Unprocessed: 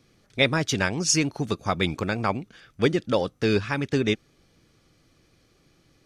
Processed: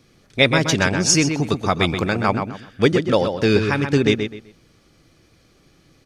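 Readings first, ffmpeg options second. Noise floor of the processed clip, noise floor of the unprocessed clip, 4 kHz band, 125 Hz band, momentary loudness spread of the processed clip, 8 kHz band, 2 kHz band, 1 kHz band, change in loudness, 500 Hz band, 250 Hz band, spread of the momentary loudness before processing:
-56 dBFS, -63 dBFS, +6.0 dB, +6.5 dB, 7 LU, +6.0 dB, +6.0 dB, +6.5 dB, +6.0 dB, +6.5 dB, +6.5 dB, 7 LU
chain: -filter_complex "[0:a]asplit=2[s0][s1];[s1]adelay=127,lowpass=f=3800:p=1,volume=0.473,asplit=2[s2][s3];[s3]adelay=127,lowpass=f=3800:p=1,volume=0.27,asplit=2[s4][s5];[s5]adelay=127,lowpass=f=3800:p=1,volume=0.27[s6];[s0][s2][s4][s6]amix=inputs=4:normalize=0,volume=1.88"

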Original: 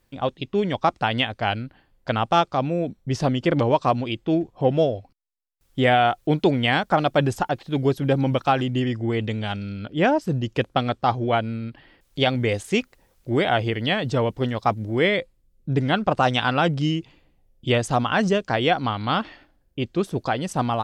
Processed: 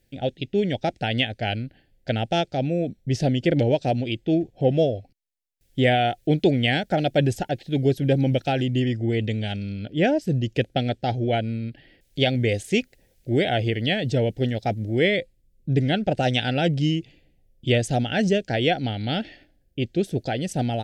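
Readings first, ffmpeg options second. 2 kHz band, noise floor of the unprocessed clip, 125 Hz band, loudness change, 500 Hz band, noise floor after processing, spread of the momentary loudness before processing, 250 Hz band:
-2.5 dB, -65 dBFS, +1.5 dB, -1.0 dB, -0.5 dB, -65 dBFS, 9 LU, +0.5 dB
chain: -af "asuperstop=centerf=1100:order=4:qfactor=1.1,equalizer=f=120:t=o:w=0.77:g=2"

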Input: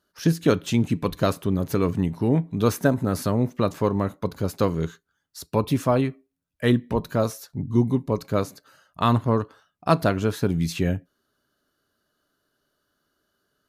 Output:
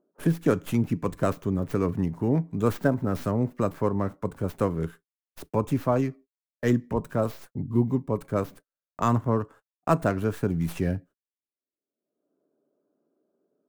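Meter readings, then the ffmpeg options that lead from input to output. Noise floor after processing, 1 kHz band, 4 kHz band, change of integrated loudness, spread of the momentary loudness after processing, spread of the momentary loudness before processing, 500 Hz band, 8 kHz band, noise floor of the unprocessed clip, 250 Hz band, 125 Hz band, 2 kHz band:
under -85 dBFS, -3.0 dB, -12.0 dB, -3.0 dB, 7 LU, 7 LU, -3.0 dB, -8.5 dB, -76 dBFS, -3.0 dB, -3.0 dB, -4.5 dB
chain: -filter_complex "[0:a]agate=range=0.00562:threshold=0.00708:ratio=16:detection=peak,acrossover=split=210|670|2700[s0][s1][s2][s3];[s1]acompressor=mode=upward:threshold=0.0316:ratio=2.5[s4];[s3]aeval=exprs='abs(val(0))':c=same[s5];[s0][s4][s2][s5]amix=inputs=4:normalize=0,volume=0.708"

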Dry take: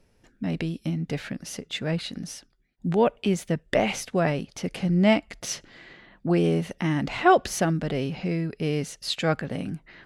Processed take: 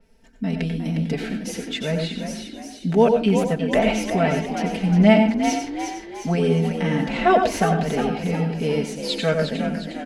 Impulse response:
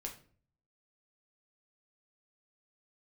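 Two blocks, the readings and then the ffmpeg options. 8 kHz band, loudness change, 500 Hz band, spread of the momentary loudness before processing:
+0.5 dB, +4.5 dB, +5.5 dB, 13 LU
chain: -filter_complex "[0:a]bandreject=f=1100:w=14,aecho=1:1:4.5:0.89,asplit=6[s0][s1][s2][s3][s4][s5];[s1]adelay=357,afreqshift=54,volume=0.398[s6];[s2]adelay=714,afreqshift=108,volume=0.176[s7];[s3]adelay=1071,afreqshift=162,volume=0.0767[s8];[s4]adelay=1428,afreqshift=216,volume=0.0339[s9];[s5]adelay=1785,afreqshift=270,volume=0.015[s10];[s0][s6][s7][s8][s9][s10]amix=inputs=6:normalize=0,asplit=2[s11][s12];[1:a]atrim=start_sample=2205,asetrate=66150,aresample=44100,adelay=91[s13];[s12][s13]afir=irnorm=-1:irlink=0,volume=0.944[s14];[s11][s14]amix=inputs=2:normalize=0,adynamicequalizer=threshold=0.00891:dfrequency=4500:dqfactor=0.7:tfrequency=4500:tqfactor=0.7:attack=5:release=100:ratio=0.375:range=3:mode=cutabove:tftype=highshelf"

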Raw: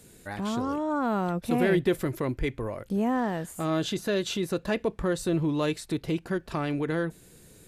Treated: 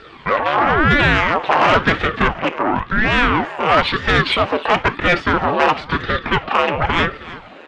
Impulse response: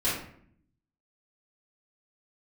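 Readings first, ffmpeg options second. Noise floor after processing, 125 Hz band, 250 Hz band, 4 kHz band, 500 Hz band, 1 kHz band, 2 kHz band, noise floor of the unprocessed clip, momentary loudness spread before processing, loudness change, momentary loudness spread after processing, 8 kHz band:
-40 dBFS, +8.5 dB, +5.0 dB, +16.0 dB, +9.0 dB, +18.0 dB, +20.5 dB, -54 dBFS, 6 LU, +12.5 dB, 7 LU, no reading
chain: -filter_complex "[0:a]equalizer=f=2100:t=o:w=0.78:g=-4,acrusher=bits=7:mode=log:mix=0:aa=0.000001,flanger=delay=0.2:depth=2:regen=58:speed=0.7:shape=triangular,aeval=exprs='0.15*sin(PI/2*5.01*val(0)/0.15)':c=same,highpass=f=390:w=0.5412,highpass=f=390:w=1.3066,equalizer=f=960:t=q:w=4:g=10,equalizer=f=1700:t=q:w=4:g=4,equalizer=f=2700:t=q:w=4:g=7,lowpass=f=2900:w=0.5412,lowpass=f=2900:w=1.3066,asoftclip=type=tanh:threshold=0.224,aecho=1:1:316|632:0.141|0.0311,asplit=2[s0][s1];[1:a]atrim=start_sample=2205,atrim=end_sample=3528,asetrate=43218,aresample=44100[s2];[s1][s2]afir=irnorm=-1:irlink=0,volume=0.0668[s3];[s0][s3]amix=inputs=2:normalize=0,aeval=exprs='val(0)*sin(2*PI*480*n/s+480*0.85/0.98*sin(2*PI*0.98*n/s))':c=same,volume=2.82"

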